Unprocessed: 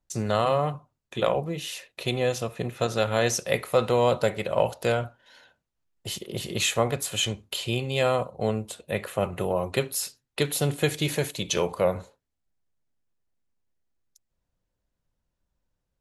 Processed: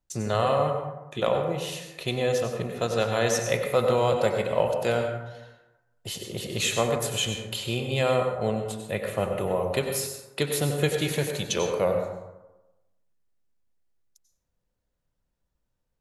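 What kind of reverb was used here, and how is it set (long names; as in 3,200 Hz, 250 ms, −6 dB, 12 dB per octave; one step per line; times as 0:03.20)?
dense smooth reverb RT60 1 s, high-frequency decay 0.45×, pre-delay 80 ms, DRR 4 dB
level −1.5 dB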